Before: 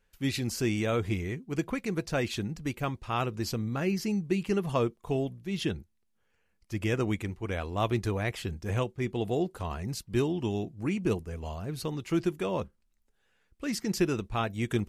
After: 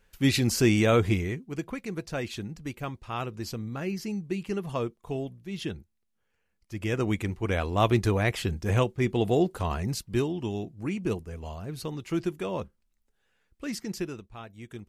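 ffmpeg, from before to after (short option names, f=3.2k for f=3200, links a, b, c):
-af "volume=15.5dB,afade=t=out:st=0.98:d=0.58:silence=0.316228,afade=t=in:st=6.74:d=0.7:silence=0.375837,afade=t=out:st=9.79:d=0.5:silence=0.473151,afade=t=out:st=13.64:d=0.63:silence=0.251189"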